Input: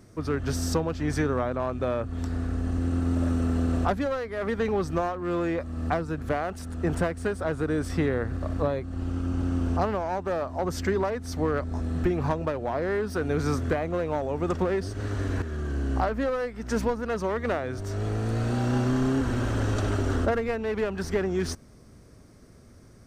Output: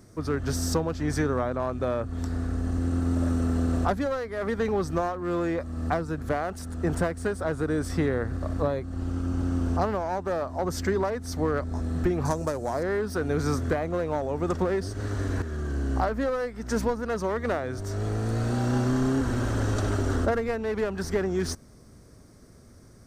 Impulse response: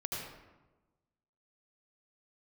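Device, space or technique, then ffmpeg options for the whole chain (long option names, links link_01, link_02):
exciter from parts: -filter_complex "[0:a]asplit=2[link_01][link_02];[link_02]highpass=frequency=2500:width=0.5412,highpass=frequency=2500:width=1.3066,asoftclip=type=tanh:threshold=-28.5dB,volume=-6.5dB[link_03];[link_01][link_03]amix=inputs=2:normalize=0,asettb=1/sr,asplit=3[link_04][link_05][link_06];[link_04]atrim=end=12.254[link_07];[link_05]atrim=start=12.25:end=12.83,asetpts=PTS-STARTPTS,afade=type=in:duration=0.004:curve=qsin,afade=type=out:start_time=0.576:duration=0.004:curve=qsin,highshelf=frequency=4700:width_type=q:width=1.5:gain=13[link_08];[link_06]atrim=start=12.826[link_09];[link_07][link_08]acrossfade=duration=0.004:curve1=hsin:curve2=qsin[link_10];[link_10][link_09]acrossfade=duration=0.004:curve1=qsin:curve2=hsin"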